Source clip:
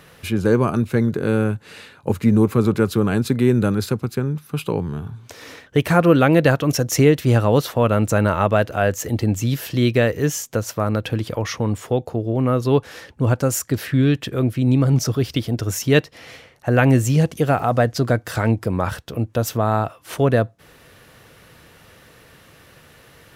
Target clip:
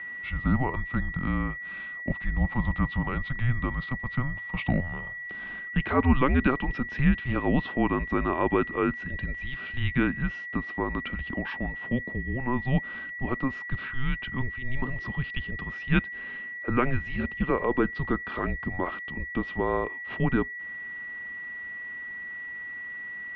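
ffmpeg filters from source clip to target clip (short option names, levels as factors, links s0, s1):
-filter_complex "[0:a]asettb=1/sr,asplit=3[s0][s1][s2];[s0]atrim=end=4.054[s3];[s1]atrim=start=4.05:end=5.13,asetpts=PTS-STARTPTS,afade=t=in:d=0.004:c=qsin,afade=t=out:st=1.076:d=0.004:c=qsin,acontrast=46[s4];[s2]atrim=start=5.126[s5];[s3][s4]acrossfade=d=0.004:c1=hsin:c2=qsin[s6];[s6][s5]acrossfade=d=0.004:c1=qsin:c2=hsin,aeval=exprs='val(0)+0.0355*sin(2*PI*2200*n/s)':c=same,highpass=f=260:t=q:w=0.5412,highpass=f=260:t=q:w=1.307,lowpass=f=3400:t=q:w=0.5176,lowpass=f=3400:t=q:w=0.7071,lowpass=f=3400:t=q:w=1.932,afreqshift=-260,volume=0.501"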